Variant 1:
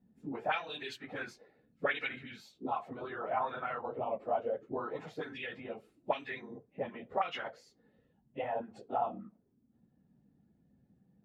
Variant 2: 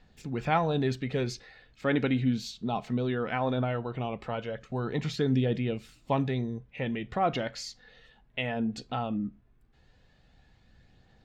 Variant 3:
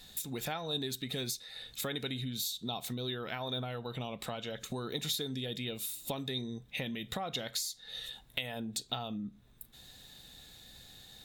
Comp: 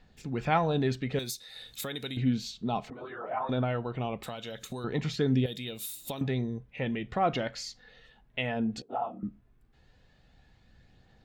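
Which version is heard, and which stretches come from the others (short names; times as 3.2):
2
1.19–2.17 from 3
2.9–3.49 from 1
4.23–4.84 from 3
5.46–6.21 from 3
8.82–9.23 from 1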